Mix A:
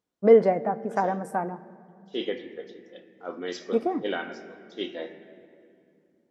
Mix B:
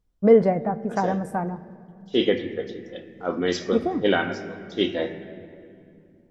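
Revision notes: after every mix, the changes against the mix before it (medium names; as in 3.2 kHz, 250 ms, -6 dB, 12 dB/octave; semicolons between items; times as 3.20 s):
second voice +8.5 dB; master: remove high-pass 270 Hz 12 dB/octave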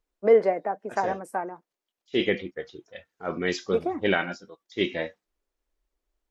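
first voice: add high-pass 310 Hz 24 dB/octave; reverb: off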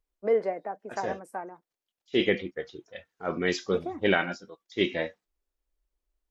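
first voice -6.5 dB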